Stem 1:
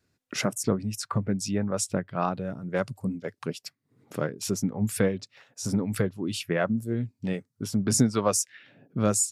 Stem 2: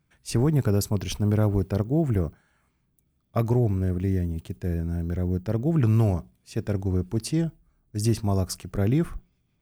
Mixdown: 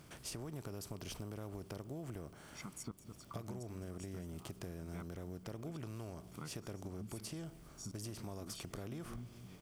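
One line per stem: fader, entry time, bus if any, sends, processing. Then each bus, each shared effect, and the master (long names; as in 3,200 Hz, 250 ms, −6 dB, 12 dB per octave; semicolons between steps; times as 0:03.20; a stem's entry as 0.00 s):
−15.0 dB, 2.20 s, no send, echo send −14 dB, comb filter 0.9 ms, depth 94%; tremolo with a ramp in dB swelling 1.4 Hz, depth 22 dB
−5.0 dB, 0.00 s, no send, no echo send, compressor on every frequency bin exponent 0.6; low-shelf EQ 370 Hz −7 dB; downward compressor 4 to 1, threshold −32 dBFS, peak gain reduction 10.5 dB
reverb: not used
echo: single-tap delay 210 ms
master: downward compressor 4 to 1, threshold −43 dBFS, peak gain reduction 10 dB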